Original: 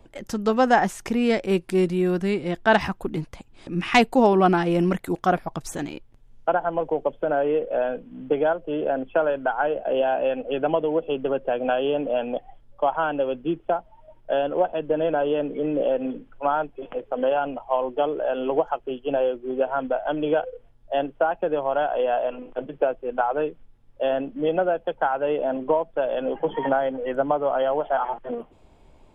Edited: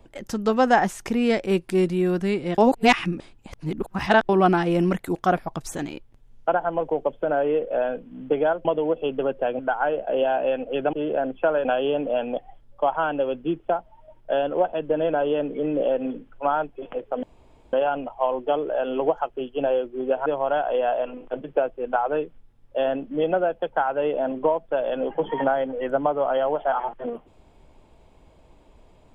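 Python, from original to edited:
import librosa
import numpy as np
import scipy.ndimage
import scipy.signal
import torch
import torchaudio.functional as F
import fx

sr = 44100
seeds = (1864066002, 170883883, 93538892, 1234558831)

y = fx.edit(x, sr, fx.reverse_span(start_s=2.58, length_s=1.71),
    fx.swap(start_s=8.65, length_s=0.72, other_s=10.71, other_length_s=0.94),
    fx.insert_room_tone(at_s=17.23, length_s=0.5),
    fx.cut(start_s=19.76, length_s=1.75), tone=tone)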